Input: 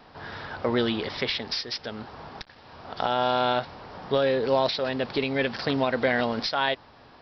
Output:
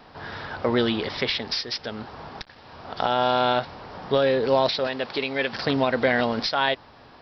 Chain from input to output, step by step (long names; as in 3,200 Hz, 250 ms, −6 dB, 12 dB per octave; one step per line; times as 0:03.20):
0:04.87–0:05.53: low-shelf EQ 280 Hz −11.5 dB
level +2.5 dB